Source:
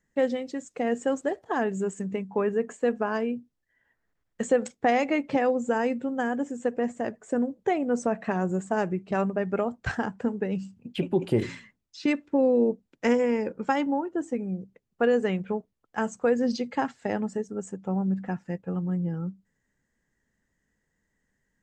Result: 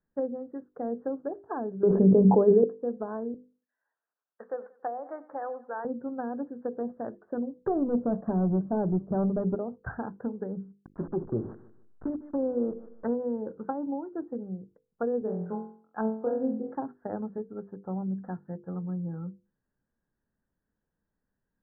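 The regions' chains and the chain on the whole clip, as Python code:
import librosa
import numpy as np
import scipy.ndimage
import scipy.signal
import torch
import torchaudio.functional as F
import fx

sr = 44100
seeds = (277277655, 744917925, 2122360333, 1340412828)

y = fx.chain(x, sr, fx.peak_eq(hz=460.0, db=11.0, octaves=2.0),
    fx.env_flatten(amount_pct=100), at=(1.83, 2.64))
y = fx.chain(y, sr, fx.highpass(hz=680.0, slope=12),
    fx.echo_feedback(ms=93, feedback_pct=37, wet_db=-18.5), at=(3.34, 5.85))
y = fx.chain(y, sr, fx.low_shelf(hz=180.0, db=7.5),
    fx.leveller(passes=2), at=(7.59, 9.55))
y = fx.chain(y, sr, fx.delta_hold(step_db=-31.5),
    fx.echo_feedback(ms=151, feedback_pct=28, wet_db=-17.5), at=(10.72, 13.11))
y = fx.chain(y, sr, fx.highpass(hz=150.0, slope=12),
    fx.room_flutter(wall_m=3.9, rt60_s=0.48), at=(15.21, 16.75))
y = fx.hum_notches(y, sr, base_hz=50, count=10)
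y = fx.env_lowpass_down(y, sr, base_hz=640.0, full_db=-22.0)
y = scipy.signal.sosfilt(scipy.signal.butter(12, 1600.0, 'lowpass', fs=sr, output='sos'), y)
y = y * librosa.db_to_amplitude(-5.0)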